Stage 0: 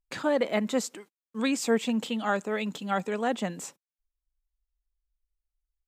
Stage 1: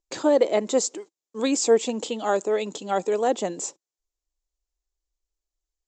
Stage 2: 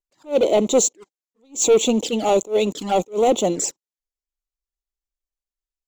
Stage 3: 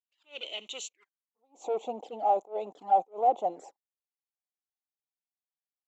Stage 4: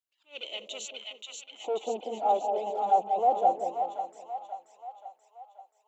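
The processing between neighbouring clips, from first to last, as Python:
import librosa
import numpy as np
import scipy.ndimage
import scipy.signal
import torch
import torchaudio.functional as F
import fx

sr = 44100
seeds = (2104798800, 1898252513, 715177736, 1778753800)

y1 = fx.curve_eq(x, sr, hz=(230.0, 330.0, 970.0, 1500.0, 2600.0, 7400.0, 11000.0), db=(0, 14, 7, 0, 2, 15, -29))
y1 = y1 * librosa.db_to_amplitude(-3.5)
y2 = fx.leveller(y1, sr, passes=3)
y2 = fx.env_flanger(y2, sr, rest_ms=5.1, full_db=-15.5)
y2 = fx.attack_slew(y2, sr, db_per_s=280.0)
y3 = fx.filter_sweep_bandpass(y2, sr, from_hz=2900.0, to_hz=770.0, start_s=0.85, end_s=1.39, q=6.0)
y4 = fx.echo_split(y3, sr, split_hz=780.0, low_ms=188, high_ms=532, feedback_pct=52, wet_db=-3.0)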